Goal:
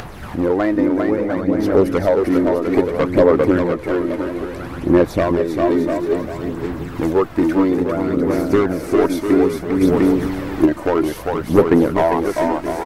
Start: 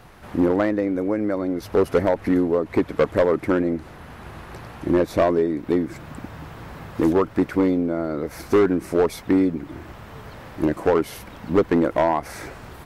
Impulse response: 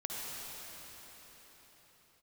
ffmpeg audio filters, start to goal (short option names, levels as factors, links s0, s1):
-filter_complex "[0:a]asplit=2[s0][s1];[s1]aecho=0:1:400|700|925|1094|1220:0.631|0.398|0.251|0.158|0.1[s2];[s0][s2]amix=inputs=2:normalize=0,asettb=1/sr,asplit=3[s3][s4][s5];[s3]atrim=end=9.814[s6];[s4]atrim=start=9.81:end=10.66,asetpts=PTS-STARTPTS,afade=t=in:d=0.004:c=qsin,afade=t=out:st=0.846:d=0.004:c=qsin,acontrast=29[s7];[s5]atrim=start=10.656[s8];[s6][s7]acrossfade=d=0.004:c1=hsin:c2=qsin[s9];[s9][s8]acrossfade=d=0.004:c1=qsin:c2=hsin,aphaser=in_gain=1:out_gain=1:delay=3.3:decay=0.41:speed=0.6:type=sinusoidal,acompressor=mode=upward:threshold=0.0562:ratio=2.5,volume=1.19"